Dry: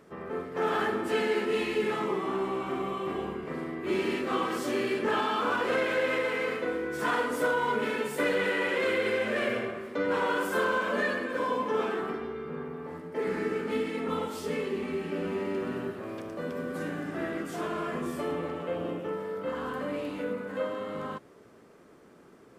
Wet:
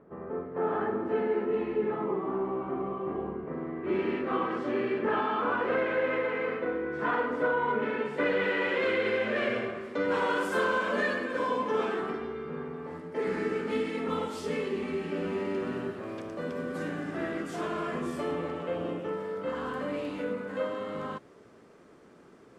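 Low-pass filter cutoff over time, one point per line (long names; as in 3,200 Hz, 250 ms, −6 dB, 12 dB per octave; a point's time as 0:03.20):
0:03.49 1,100 Hz
0:04.00 2,000 Hz
0:07.88 2,000 Hz
0:08.67 4,200 Hz
0:09.34 4,200 Hz
0:09.97 8,900 Hz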